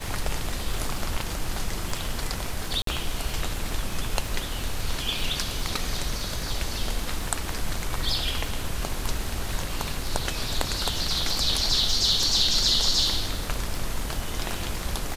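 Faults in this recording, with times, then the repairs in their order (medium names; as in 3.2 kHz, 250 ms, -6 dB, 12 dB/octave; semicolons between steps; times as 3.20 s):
crackle 59 per s -31 dBFS
2.82–2.87 s: dropout 53 ms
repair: de-click; interpolate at 2.82 s, 53 ms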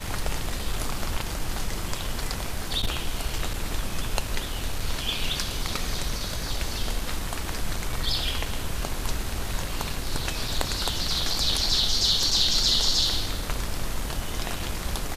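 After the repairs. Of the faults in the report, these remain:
nothing left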